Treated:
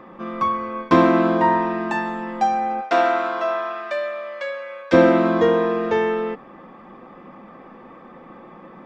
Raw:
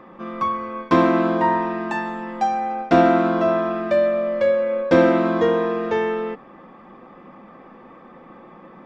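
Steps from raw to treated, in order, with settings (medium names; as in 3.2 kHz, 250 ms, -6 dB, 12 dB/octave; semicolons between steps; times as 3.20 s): 2.80–4.92 s: high-pass 630 Hz -> 1.4 kHz 12 dB/octave; trim +1.5 dB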